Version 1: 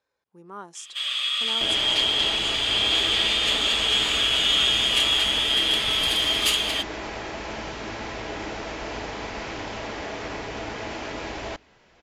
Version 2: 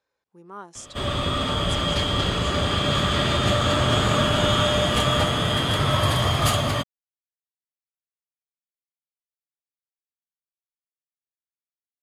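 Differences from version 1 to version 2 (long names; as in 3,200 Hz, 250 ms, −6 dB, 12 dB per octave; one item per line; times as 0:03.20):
first sound: remove high-pass with resonance 2,700 Hz, resonance Q 2.2
second sound: muted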